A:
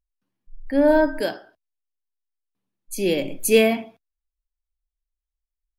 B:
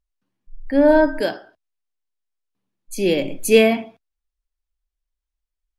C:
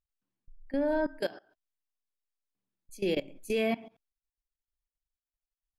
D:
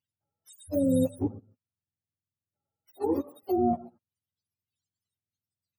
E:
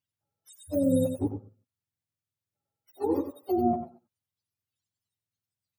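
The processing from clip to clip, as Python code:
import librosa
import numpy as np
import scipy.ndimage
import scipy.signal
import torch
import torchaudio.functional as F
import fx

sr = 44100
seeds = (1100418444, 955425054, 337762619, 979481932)

y1 = fx.high_shelf(x, sr, hz=11000.0, db=-11.5)
y1 = y1 * 10.0 ** (3.0 / 20.0)
y2 = fx.level_steps(y1, sr, step_db=20)
y2 = y2 * 10.0 ** (-7.5 / 20.0)
y3 = fx.octave_mirror(y2, sr, pivot_hz=400.0)
y3 = y3 * 10.0 ** (5.0 / 20.0)
y4 = y3 + 10.0 ** (-9.0 / 20.0) * np.pad(y3, (int(95 * sr / 1000.0), 0))[:len(y3)]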